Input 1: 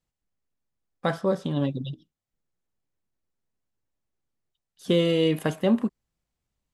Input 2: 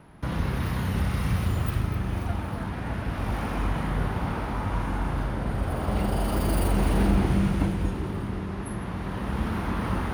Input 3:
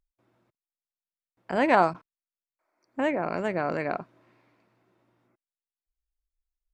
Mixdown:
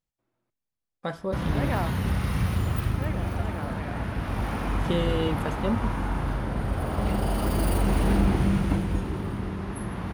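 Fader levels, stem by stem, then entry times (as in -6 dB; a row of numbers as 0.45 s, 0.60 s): -6.0 dB, 0.0 dB, -11.0 dB; 0.00 s, 1.10 s, 0.00 s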